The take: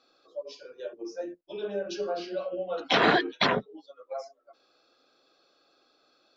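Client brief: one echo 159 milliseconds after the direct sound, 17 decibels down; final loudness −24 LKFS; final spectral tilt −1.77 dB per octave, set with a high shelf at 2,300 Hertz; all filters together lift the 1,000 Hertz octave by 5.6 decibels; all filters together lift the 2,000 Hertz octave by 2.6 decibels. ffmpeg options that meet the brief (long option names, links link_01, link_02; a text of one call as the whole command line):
ffmpeg -i in.wav -af "equalizer=frequency=1000:width_type=o:gain=8,equalizer=frequency=2000:width_type=o:gain=3.5,highshelf=frequency=2300:gain=-7,aecho=1:1:159:0.141,volume=2.5dB" out.wav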